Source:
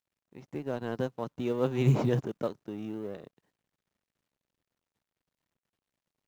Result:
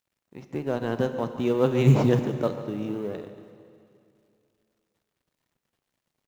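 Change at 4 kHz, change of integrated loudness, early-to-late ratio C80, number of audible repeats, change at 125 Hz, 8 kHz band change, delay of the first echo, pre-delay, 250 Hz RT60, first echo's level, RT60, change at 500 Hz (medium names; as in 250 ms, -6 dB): +6.5 dB, +6.5 dB, 9.5 dB, 1, +6.0 dB, no reading, 143 ms, 13 ms, 2.4 s, -15.5 dB, 2.5 s, +7.0 dB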